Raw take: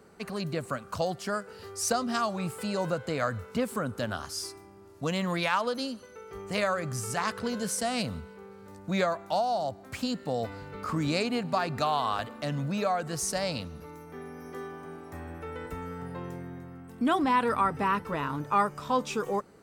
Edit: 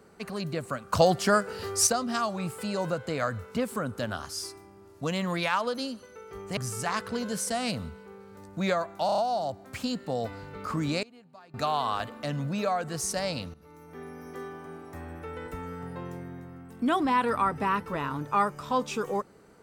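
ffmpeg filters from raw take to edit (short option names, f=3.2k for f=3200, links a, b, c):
-filter_complex "[0:a]asplit=11[a][b][c][d][e][f][g][h][i][j][k];[a]atrim=end=0.932[l];[b]atrim=start=0.928:end=1.872,asetpts=PTS-STARTPTS,volume=9dB[m];[c]atrim=start=1.868:end=6.572[n];[d]atrim=start=6.878:end=9.402[o];[e]atrim=start=9.368:end=9.402[p];[f]atrim=start=9.368:end=9.402[q];[g]atrim=start=9.368:end=9.402[r];[h]atrim=start=9.368:end=11.22,asetpts=PTS-STARTPTS,afade=t=out:st=1.552:d=0.3:c=log:silence=0.0668344[s];[i]atrim=start=11.22:end=11.73,asetpts=PTS-STARTPTS,volume=-23.5dB[t];[j]atrim=start=11.73:end=13.73,asetpts=PTS-STARTPTS,afade=t=in:d=0.3:c=log:silence=0.0668344,afade=t=out:st=1.996:d=0.004:c=hsin:silence=0.16788[u];[k]atrim=start=13.73,asetpts=PTS-STARTPTS,afade=t=in:d=0.49:silence=0.16788[v];[l][m]acrossfade=d=0.004:c1=hsin:c2=hsin[w];[w][n]acrossfade=d=0.004:c1=hsin:c2=hsin[x];[x][o]acrossfade=d=0.004:c1=hsin:c2=hsin[y];[y][p]acrossfade=d=0.004:c1=hsin:c2=hsin[z];[z][q]acrossfade=d=0.004:c1=hsin:c2=hsin[aa];[aa][r]acrossfade=d=0.004:c1=hsin:c2=hsin[ab];[s][t][u][v]concat=n=4:v=0:a=1[ac];[ab][ac]acrossfade=d=0.004:c1=hsin:c2=hsin"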